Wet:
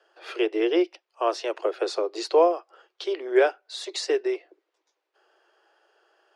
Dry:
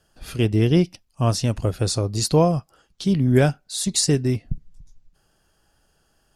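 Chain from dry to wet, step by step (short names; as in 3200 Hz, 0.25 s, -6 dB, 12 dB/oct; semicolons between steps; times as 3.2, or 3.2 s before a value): steep high-pass 340 Hz 96 dB/oct; in parallel at -2 dB: compressor, threshold -33 dBFS, peak gain reduction 17 dB; on the sum: LPF 2800 Hz 12 dB/oct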